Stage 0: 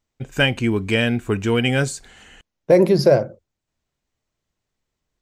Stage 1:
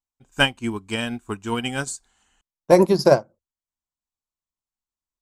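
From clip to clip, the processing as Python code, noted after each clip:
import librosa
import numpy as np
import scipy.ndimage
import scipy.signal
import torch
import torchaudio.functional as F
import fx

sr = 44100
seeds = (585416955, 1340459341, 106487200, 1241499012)

y = fx.graphic_eq(x, sr, hz=(125, 500, 1000, 2000, 8000), db=(-8, -9, 8, -8, 7))
y = fx.upward_expand(y, sr, threshold_db=-32.0, expansion=2.5)
y = F.gain(torch.from_numpy(y), 7.5).numpy()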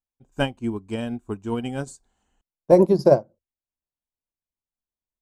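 y = fx.curve_eq(x, sr, hz=(590.0, 1300.0, 2000.0), db=(0, -10, -12))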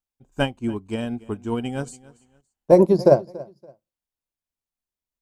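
y = fx.echo_feedback(x, sr, ms=284, feedback_pct=26, wet_db=-21.0)
y = F.gain(torch.from_numpy(y), 1.0).numpy()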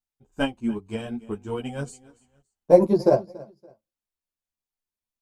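y = fx.ensemble(x, sr)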